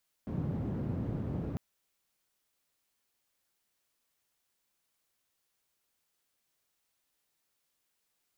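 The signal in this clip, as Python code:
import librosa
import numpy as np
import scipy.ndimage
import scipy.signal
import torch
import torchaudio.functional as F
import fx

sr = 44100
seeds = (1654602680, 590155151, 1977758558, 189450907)

y = fx.band_noise(sr, seeds[0], length_s=1.3, low_hz=81.0, high_hz=180.0, level_db=-35.0)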